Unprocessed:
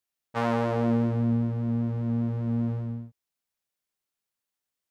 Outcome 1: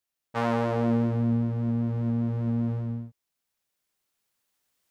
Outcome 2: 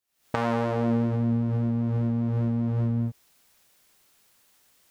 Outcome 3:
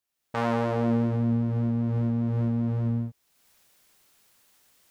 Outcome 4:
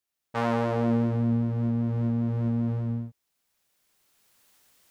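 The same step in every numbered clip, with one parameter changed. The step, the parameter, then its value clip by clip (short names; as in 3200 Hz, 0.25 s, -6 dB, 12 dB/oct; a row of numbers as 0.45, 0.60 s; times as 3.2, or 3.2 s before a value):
recorder AGC, rising by: 5.1, 84, 32, 13 dB/s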